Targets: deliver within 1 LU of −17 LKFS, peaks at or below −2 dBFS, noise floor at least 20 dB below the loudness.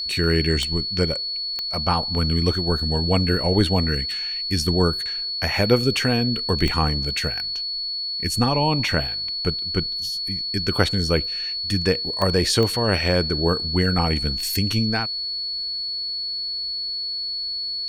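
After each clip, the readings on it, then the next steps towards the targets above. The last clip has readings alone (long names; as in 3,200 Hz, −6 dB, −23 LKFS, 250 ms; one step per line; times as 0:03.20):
number of clicks 5; interfering tone 4,400 Hz; level of the tone −25 dBFS; integrated loudness −21.5 LKFS; sample peak −3.0 dBFS; target loudness −17.0 LKFS
→ click removal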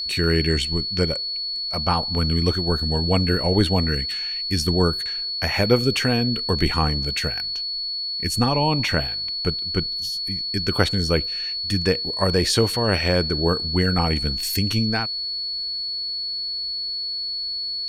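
number of clicks 0; interfering tone 4,400 Hz; level of the tone −25 dBFS
→ notch filter 4,400 Hz, Q 30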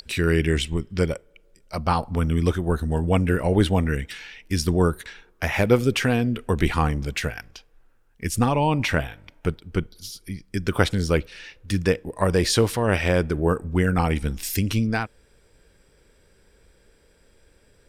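interfering tone none found; integrated loudness −23.5 LKFS; sample peak −3.5 dBFS; target loudness −17.0 LKFS
→ level +6.5 dB
brickwall limiter −2 dBFS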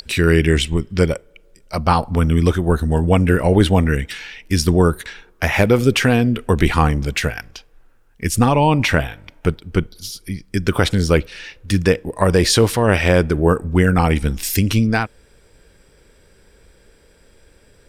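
integrated loudness −17.5 LKFS; sample peak −2.0 dBFS; background noise floor −53 dBFS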